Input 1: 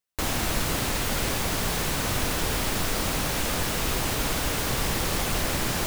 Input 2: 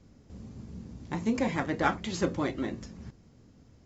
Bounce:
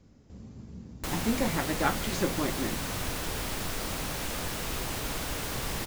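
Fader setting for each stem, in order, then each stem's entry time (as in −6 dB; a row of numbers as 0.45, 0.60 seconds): −7.0, −1.0 decibels; 0.85, 0.00 seconds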